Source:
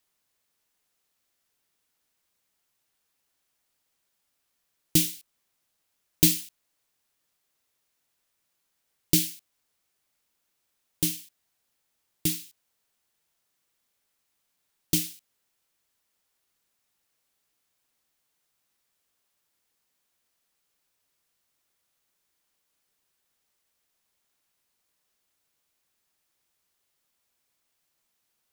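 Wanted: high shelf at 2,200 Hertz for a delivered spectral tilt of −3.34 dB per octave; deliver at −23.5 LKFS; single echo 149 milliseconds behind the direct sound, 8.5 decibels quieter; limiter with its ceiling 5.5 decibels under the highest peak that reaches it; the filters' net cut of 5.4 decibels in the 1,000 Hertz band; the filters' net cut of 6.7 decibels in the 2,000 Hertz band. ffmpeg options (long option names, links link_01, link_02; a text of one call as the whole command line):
ffmpeg -i in.wav -af "equalizer=frequency=1000:width_type=o:gain=-5.5,equalizer=frequency=2000:width_type=o:gain=-3,highshelf=frequency=2200:gain=-7,alimiter=limit=-12dB:level=0:latency=1,aecho=1:1:149:0.376,volume=9dB" out.wav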